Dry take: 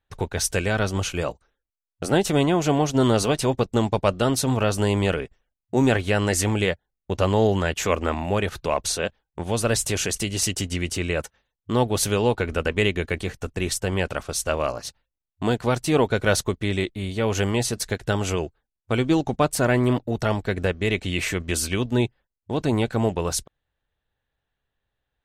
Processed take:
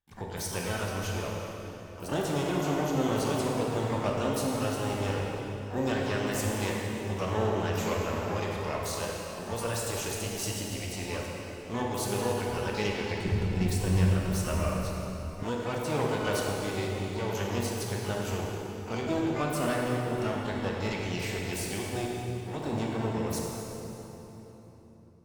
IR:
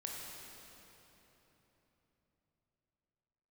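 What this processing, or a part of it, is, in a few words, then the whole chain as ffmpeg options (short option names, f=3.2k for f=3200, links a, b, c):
shimmer-style reverb: -filter_complex "[0:a]asplit=2[a][b];[b]asetrate=88200,aresample=44100,atempo=0.5,volume=-7dB[c];[a][c]amix=inputs=2:normalize=0[d];[1:a]atrim=start_sample=2205[e];[d][e]afir=irnorm=-1:irlink=0,asettb=1/sr,asplit=3[f][g][h];[f]atrim=end=13.254[i];[g]atrim=start=13.25:end=15.43,asetpts=PTS-STARTPTS,afade=t=in:d=0.004:c=qsin,afade=t=out:st=2.176:d=0.004:c=qsin,bass=f=250:g=11,treble=f=4k:g=0[j];[h]atrim=start=15.426[k];[i][j]acrossfade=d=0.004:c1=hsin:c2=qsin[l];[l][k]acrossfade=d=0.004:c1=qsin:c2=hsin,volume=-8.5dB"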